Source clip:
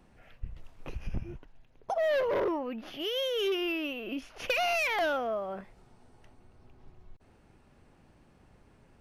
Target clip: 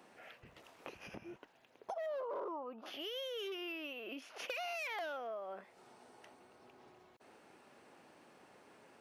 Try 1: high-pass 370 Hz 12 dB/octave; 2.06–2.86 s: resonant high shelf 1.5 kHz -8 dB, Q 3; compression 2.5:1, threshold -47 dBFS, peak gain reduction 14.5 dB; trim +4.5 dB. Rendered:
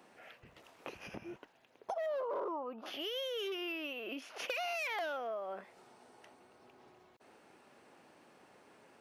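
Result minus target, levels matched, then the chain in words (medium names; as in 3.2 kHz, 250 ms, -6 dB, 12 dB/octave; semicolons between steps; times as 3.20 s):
compression: peak gain reduction -3.5 dB
high-pass 370 Hz 12 dB/octave; 2.06–2.86 s: resonant high shelf 1.5 kHz -8 dB, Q 3; compression 2.5:1, threshold -53 dBFS, peak gain reduction 18 dB; trim +4.5 dB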